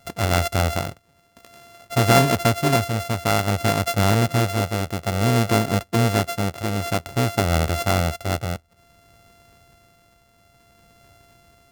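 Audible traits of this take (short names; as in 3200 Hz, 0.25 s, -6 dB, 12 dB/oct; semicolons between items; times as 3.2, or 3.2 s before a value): a buzz of ramps at a fixed pitch in blocks of 64 samples; tremolo triangle 0.56 Hz, depth 50%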